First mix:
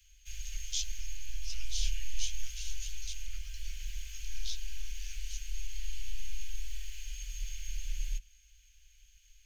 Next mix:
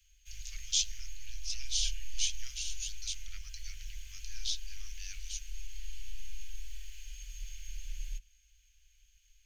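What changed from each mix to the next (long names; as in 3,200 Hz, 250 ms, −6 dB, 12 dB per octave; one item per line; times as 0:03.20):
speech +6.0 dB
background −4.5 dB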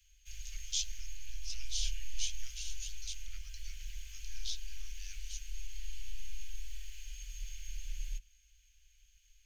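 speech −5.5 dB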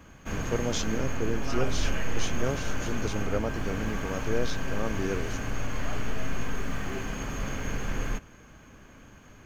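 background +6.5 dB
master: remove inverse Chebyshev band-stop filter 200–690 Hz, stop band 80 dB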